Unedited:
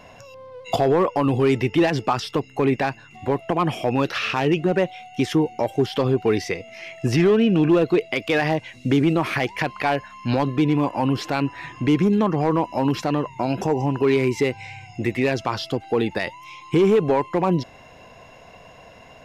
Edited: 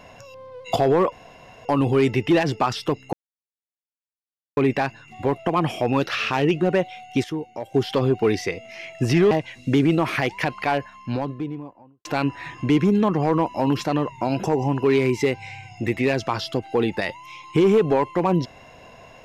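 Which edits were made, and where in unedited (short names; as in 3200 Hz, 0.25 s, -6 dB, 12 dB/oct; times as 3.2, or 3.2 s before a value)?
1.12 insert room tone 0.53 s
2.6 insert silence 1.44 s
5.27–5.77 gain -9 dB
7.34–8.49 cut
9.67–11.23 studio fade out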